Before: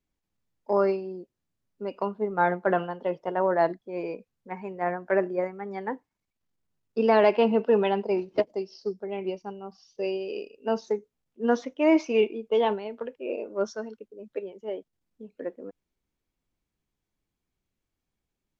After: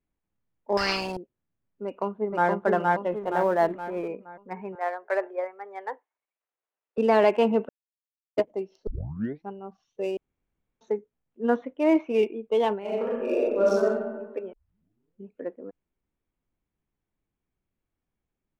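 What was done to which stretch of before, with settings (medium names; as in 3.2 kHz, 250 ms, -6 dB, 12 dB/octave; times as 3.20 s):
0.77–1.17 s: spectrum-flattening compressor 10:1
1.85–2.49 s: echo throw 470 ms, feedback 45%, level -0.5 dB
3.12–4.08 s: companding laws mixed up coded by mu
4.75–6.98 s: high-pass 480 Hz 24 dB/octave
7.69–8.37 s: mute
8.87 s: tape start 0.61 s
10.17–10.81 s: room tone
11.56–12.23 s: distance through air 200 m
12.79–13.99 s: reverb throw, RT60 1.3 s, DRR -7 dB
14.53 s: tape start 0.77 s
whole clip: local Wiener filter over 9 samples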